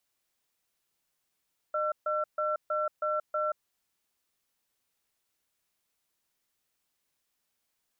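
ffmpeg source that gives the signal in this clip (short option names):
-f lavfi -i "aevalsrc='0.0335*(sin(2*PI*610*t)+sin(2*PI*1350*t))*clip(min(mod(t,0.32),0.18-mod(t,0.32))/0.005,0,1)':d=1.9:s=44100"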